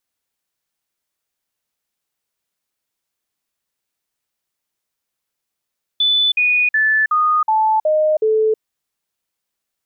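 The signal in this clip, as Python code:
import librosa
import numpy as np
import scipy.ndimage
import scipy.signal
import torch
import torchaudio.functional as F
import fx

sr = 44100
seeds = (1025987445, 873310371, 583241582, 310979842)

y = fx.stepped_sweep(sr, from_hz=3490.0, direction='down', per_octave=2, tones=7, dwell_s=0.32, gap_s=0.05, level_db=-12.0)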